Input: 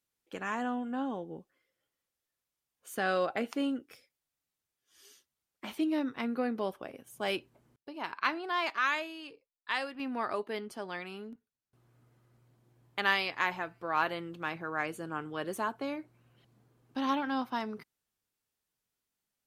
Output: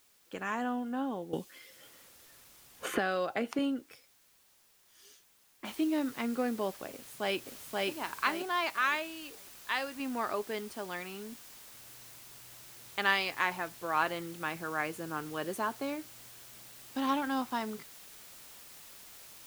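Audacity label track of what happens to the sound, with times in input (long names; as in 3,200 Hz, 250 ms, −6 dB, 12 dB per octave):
1.330000	3.590000	multiband upward and downward compressor depth 100%
5.650000	5.650000	noise floor change −66 dB −52 dB
6.920000	7.890000	delay throw 530 ms, feedback 30%, level −0.5 dB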